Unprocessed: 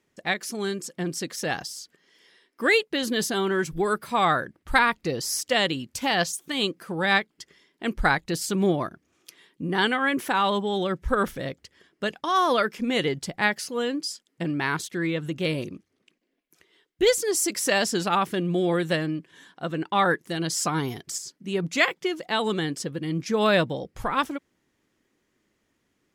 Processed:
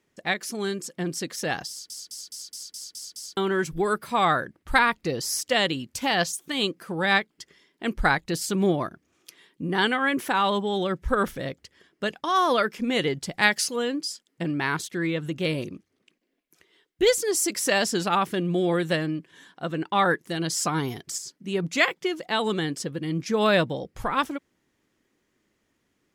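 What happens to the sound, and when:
1.69 s: stutter in place 0.21 s, 8 plays
13.31–13.76 s: peaking EQ 7.4 kHz +9 dB 2.8 oct

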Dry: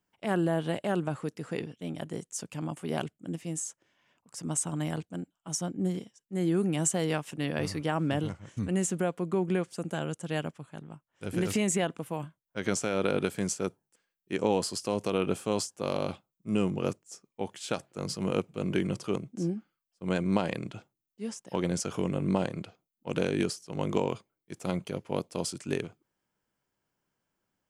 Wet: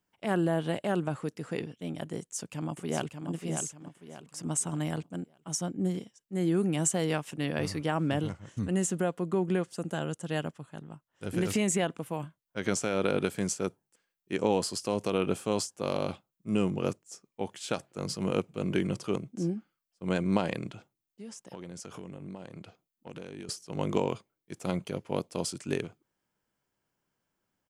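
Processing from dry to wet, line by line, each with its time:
2.19–3.29 s: echo throw 590 ms, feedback 35%, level -6 dB
8.37–11.33 s: band-stop 2.3 kHz
20.72–23.49 s: compression 4:1, threshold -41 dBFS

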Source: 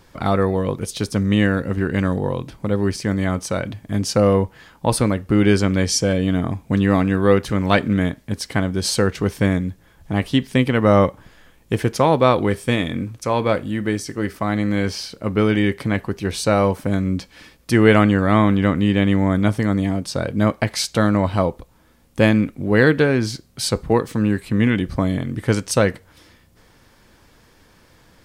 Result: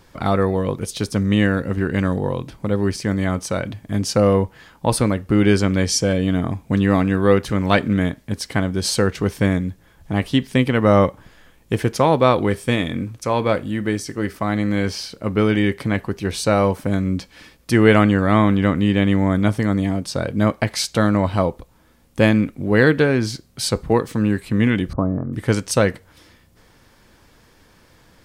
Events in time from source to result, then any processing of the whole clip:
24.93–25.33 s: elliptic low-pass 1.3 kHz, stop band 80 dB

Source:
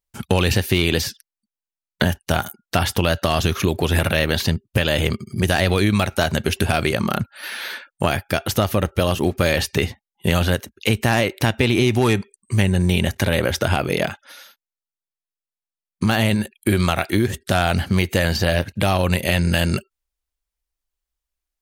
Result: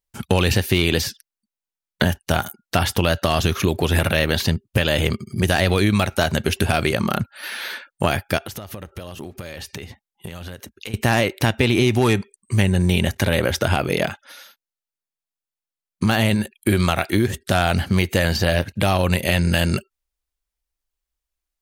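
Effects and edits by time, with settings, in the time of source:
8.38–10.94 s: compression 10:1, threshold -29 dBFS

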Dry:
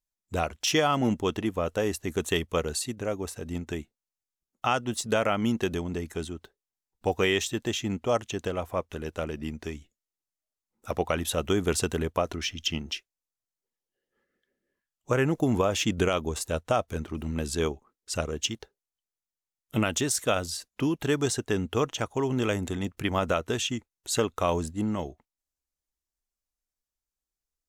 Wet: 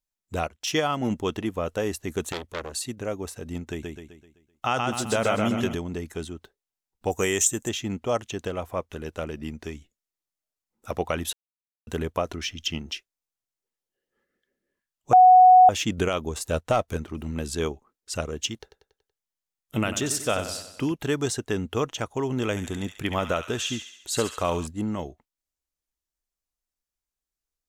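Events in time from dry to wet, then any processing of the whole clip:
0.47–1.10 s: upward expansion, over -42 dBFS
2.32–2.87 s: transformer saturation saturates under 3 kHz
3.70–5.75 s: feedback delay 128 ms, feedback 46%, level -3 dB
7.10–7.69 s: resonant high shelf 5.5 kHz +9.5 dB, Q 3
11.33–11.87 s: mute
15.13–15.69 s: bleep 738 Hz -9 dBFS
16.47–16.97 s: waveshaping leveller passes 1
18.60–20.92 s: feedback delay 94 ms, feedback 50%, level -10.5 dB
22.50–24.67 s: feedback echo behind a high-pass 69 ms, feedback 57%, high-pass 1.7 kHz, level -5.5 dB

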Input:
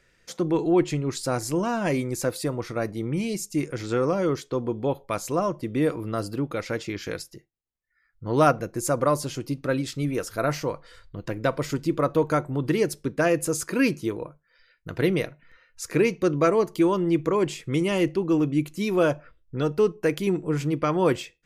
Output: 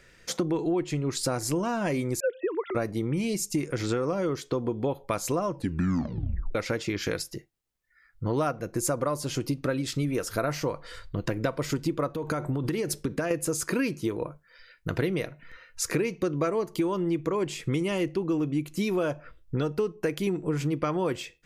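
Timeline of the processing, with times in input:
2.20–2.75 s: formants replaced by sine waves
5.49 s: tape stop 1.06 s
12.15–13.31 s: compression 10:1, threshold -27 dBFS
whole clip: compression 6:1, threshold -32 dBFS; trim +7 dB

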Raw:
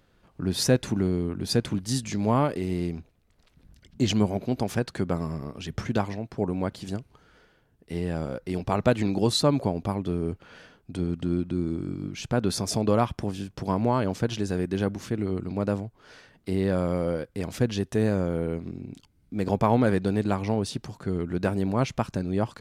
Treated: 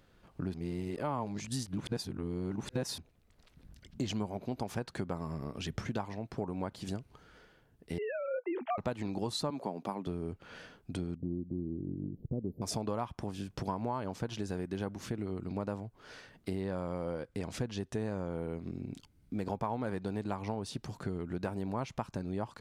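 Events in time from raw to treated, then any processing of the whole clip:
0.54–2.98 s: reverse
7.98–8.78 s: formants replaced by sine waves
9.50–10.07 s: high-pass 170 Hz 24 dB/octave
11.15–12.62 s: inverse Chebyshev band-stop 1.4–9.5 kHz, stop band 60 dB
16.62–18.38 s: low-pass 10 kHz
whole clip: dynamic bell 920 Hz, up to +7 dB, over -42 dBFS, Q 1.9; compression 4:1, threshold -33 dBFS; trim -1 dB

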